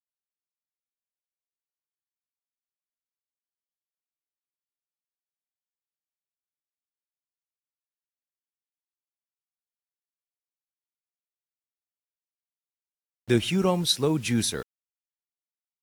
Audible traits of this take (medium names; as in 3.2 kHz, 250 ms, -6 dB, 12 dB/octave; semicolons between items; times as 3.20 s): a quantiser's noise floor 8-bit, dither none; AAC